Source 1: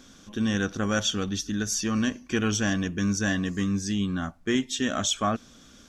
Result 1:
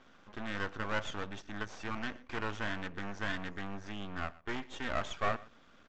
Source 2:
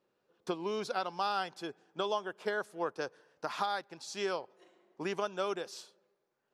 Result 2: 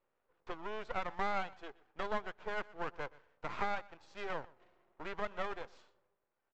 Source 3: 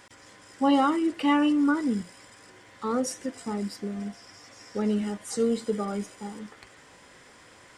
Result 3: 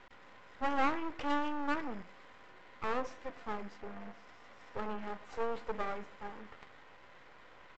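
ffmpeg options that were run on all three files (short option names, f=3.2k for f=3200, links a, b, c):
-filter_complex "[0:a]aeval=exprs='(tanh(14.1*val(0)+0.45)-tanh(0.45))/14.1':c=same,acrossover=split=510 2800:gain=0.251 1 0.0891[a][b][c];[a][b][c]amix=inputs=3:normalize=0,bandreject=f=1.7k:w=22,aresample=16000,aeval=exprs='max(val(0),0)':c=same,aresample=44100,highshelf=f=3.4k:g=-7.5,asplit=2[d][e];[e]aecho=0:1:122:0.0841[f];[d][f]amix=inputs=2:normalize=0,volume=5.5dB"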